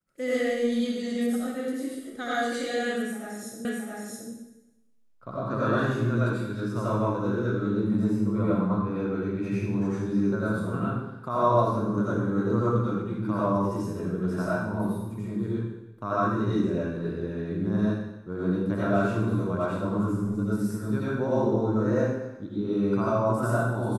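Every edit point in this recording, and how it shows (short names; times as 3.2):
3.65 repeat of the last 0.67 s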